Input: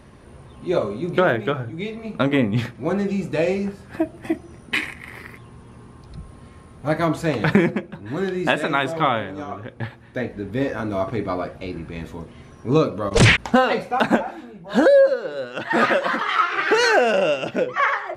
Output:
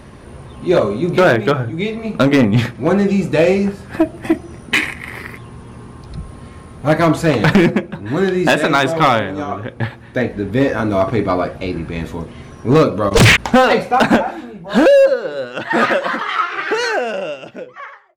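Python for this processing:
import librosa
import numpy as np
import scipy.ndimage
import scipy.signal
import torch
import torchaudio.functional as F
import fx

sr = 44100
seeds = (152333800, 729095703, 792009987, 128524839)

y = fx.fade_out_tail(x, sr, length_s=4.04)
y = np.clip(10.0 ** (14.0 / 20.0) * y, -1.0, 1.0) / 10.0 ** (14.0 / 20.0)
y = F.gain(torch.from_numpy(y), 8.5).numpy()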